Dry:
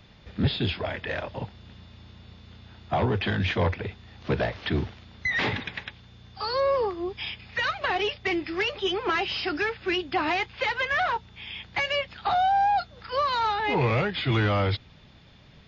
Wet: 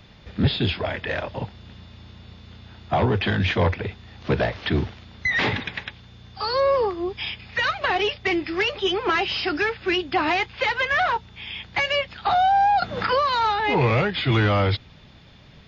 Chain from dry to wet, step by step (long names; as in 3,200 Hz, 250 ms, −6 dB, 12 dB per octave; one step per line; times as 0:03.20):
0:12.82–0:13.29: multiband upward and downward compressor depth 100%
level +4 dB